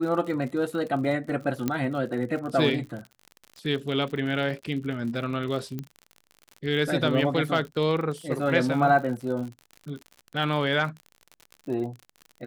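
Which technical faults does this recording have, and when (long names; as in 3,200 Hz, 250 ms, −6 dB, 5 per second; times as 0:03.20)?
surface crackle 56 per second −34 dBFS
0:01.68: click −12 dBFS
0:05.79: click −20 dBFS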